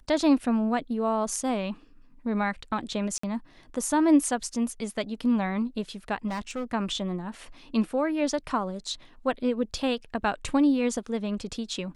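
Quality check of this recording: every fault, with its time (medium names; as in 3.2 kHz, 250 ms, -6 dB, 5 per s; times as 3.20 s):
3.18–3.23 s: dropout 54 ms
6.27–6.64 s: clipped -28 dBFS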